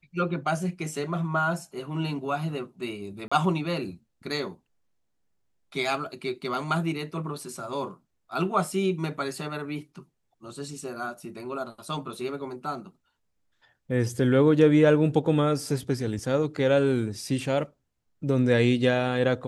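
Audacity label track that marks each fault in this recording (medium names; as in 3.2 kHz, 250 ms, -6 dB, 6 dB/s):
3.280000	3.310000	dropout 35 ms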